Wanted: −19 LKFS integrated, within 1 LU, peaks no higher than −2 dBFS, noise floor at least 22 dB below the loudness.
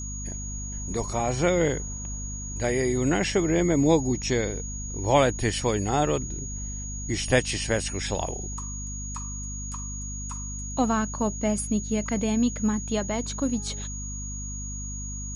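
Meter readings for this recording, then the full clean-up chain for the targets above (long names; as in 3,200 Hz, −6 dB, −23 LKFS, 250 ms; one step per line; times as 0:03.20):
mains hum 50 Hz; hum harmonics up to 250 Hz; level of the hum −33 dBFS; interfering tone 6,700 Hz; level of the tone −36 dBFS; integrated loudness −27.0 LKFS; sample peak −7.0 dBFS; target loudness −19.0 LKFS
→ mains-hum notches 50/100/150/200/250 Hz
notch filter 6,700 Hz, Q 30
level +8 dB
brickwall limiter −2 dBFS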